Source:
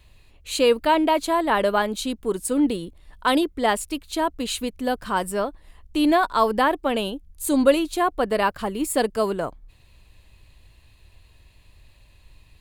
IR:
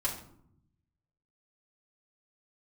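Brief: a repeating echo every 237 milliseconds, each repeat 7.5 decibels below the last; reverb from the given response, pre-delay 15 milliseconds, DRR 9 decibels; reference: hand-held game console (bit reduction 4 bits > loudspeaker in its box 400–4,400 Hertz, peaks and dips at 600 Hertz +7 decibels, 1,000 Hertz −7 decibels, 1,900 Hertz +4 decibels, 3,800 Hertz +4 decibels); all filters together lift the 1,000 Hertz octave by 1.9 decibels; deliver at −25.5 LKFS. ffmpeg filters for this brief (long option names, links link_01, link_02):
-filter_complex "[0:a]equalizer=frequency=1000:width_type=o:gain=5.5,aecho=1:1:237|474|711|948|1185:0.422|0.177|0.0744|0.0312|0.0131,asplit=2[link_01][link_02];[1:a]atrim=start_sample=2205,adelay=15[link_03];[link_02][link_03]afir=irnorm=-1:irlink=0,volume=-14dB[link_04];[link_01][link_04]amix=inputs=2:normalize=0,acrusher=bits=3:mix=0:aa=0.000001,highpass=400,equalizer=frequency=600:width_type=q:width=4:gain=7,equalizer=frequency=1000:width_type=q:width=4:gain=-7,equalizer=frequency=1900:width_type=q:width=4:gain=4,equalizer=frequency=3800:width_type=q:width=4:gain=4,lowpass=frequency=4400:width=0.5412,lowpass=frequency=4400:width=1.3066,volume=-6.5dB"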